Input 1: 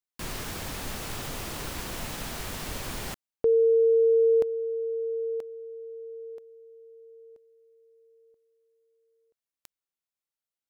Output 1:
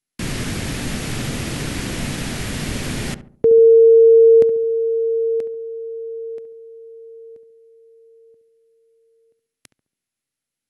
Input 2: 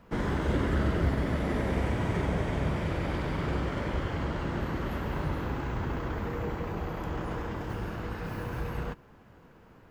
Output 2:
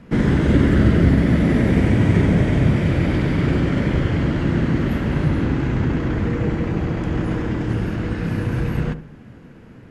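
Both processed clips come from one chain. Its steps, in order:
octave-band graphic EQ 125/250/1,000/2,000 Hz +7/+7/−6/+4 dB
feedback echo with a low-pass in the loop 70 ms, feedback 44%, low-pass 1,000 Hz, level −10.5 dB
level +7.5 dB
MP2 96 kbit/s 44,100 Hz

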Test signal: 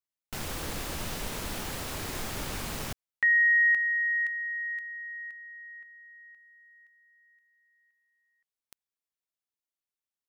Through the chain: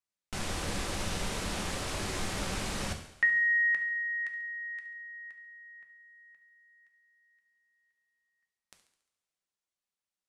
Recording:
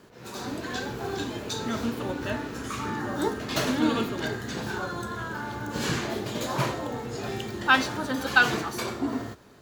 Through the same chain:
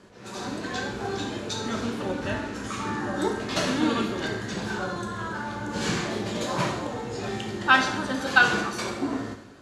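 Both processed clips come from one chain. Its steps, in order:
low-pass filter 10,000 Hz 24 dB per octave
on a send: feedback echo with a high-pass in the loop 70 ms, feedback 56%, level −15 dB
on the sum: coupled-rooms reverb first 0.63 s, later 2.5 s, from −19 dB, DRR 4.5 dB

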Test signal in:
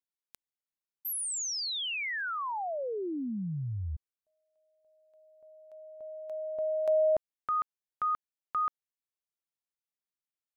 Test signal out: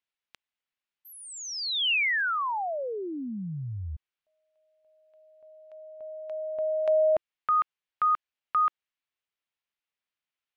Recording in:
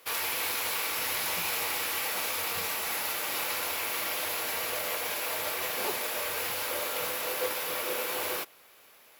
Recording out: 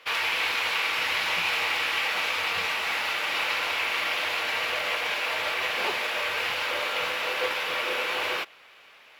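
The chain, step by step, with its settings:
drawn EQ curve 340 Hz 0 dB, 2,800 Hz +10 dB, 15,000 Hz −18 dB

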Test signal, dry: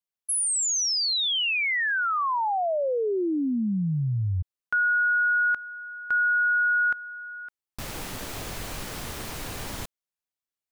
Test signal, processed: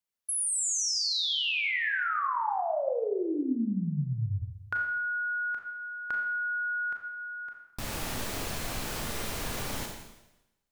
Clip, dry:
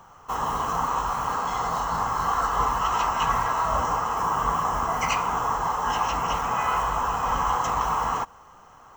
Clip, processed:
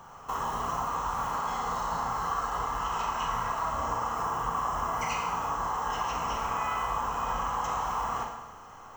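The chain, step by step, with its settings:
downward compressor 3 to 1, threshold −33 dBFS
four-comb reverb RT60 0.95 s, combs from 27 ms, DRR 1 dB

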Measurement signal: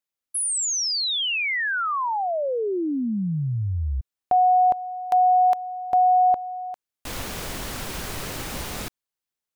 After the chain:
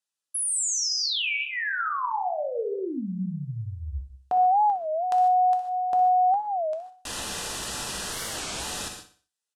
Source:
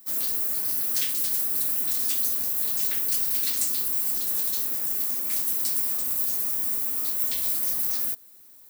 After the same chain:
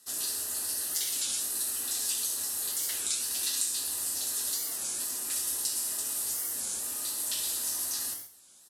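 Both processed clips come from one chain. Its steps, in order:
low-pass filter 10,000 Hz 24 dB per octave
spectral tilt +2 dB per octave
downward compressor 4 to 1, threshold −26 dBFS
Butterworth band-reject 2,200 Hz, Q 5.9
tuned comb filter 67 Hz, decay 0.21 s, harmonics odd, mix 60%
repeating echo 61 ms, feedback 41%, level −12 dB
reverb whose tail is shaped and stops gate 170 ms flat, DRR 5 dB
wow of a warped record 33 1/3 rpm, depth 250 cents
level +3 dB

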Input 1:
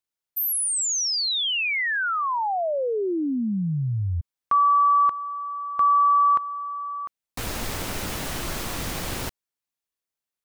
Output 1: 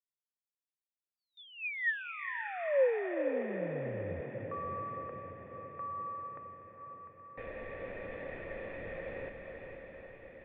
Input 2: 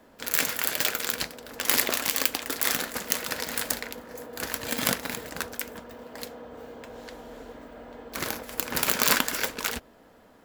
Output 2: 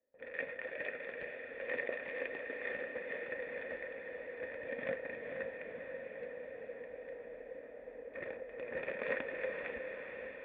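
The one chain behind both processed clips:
formant resonators in series e
noise gate with hold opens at −56 dBFS, range −21 dB
feedback delay with all-pass diffusion 474 ms, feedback 67%, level −5.5 dB
level +1 dB

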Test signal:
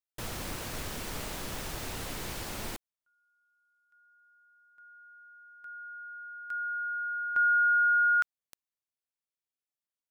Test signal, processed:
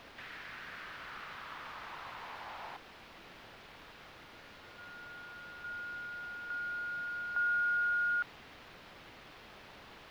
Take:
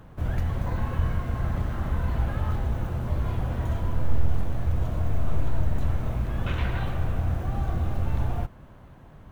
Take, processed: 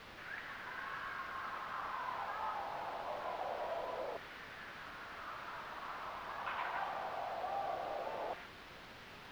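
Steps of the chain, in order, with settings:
high-pass filter 370 Hz 12 dB per octave
in parallel at −1 dB: downward compressor 6 to 1, threshold −42 dBFS
on the sum: floating-point word with a short mantissa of 2 bits
auto-filter high-pass saw down 0.24 Hz 530–1,900 Hz
bit-depth reduction 6 bits, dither triangular
high-frequency loss of the air 340 metres
level −7.5 dB

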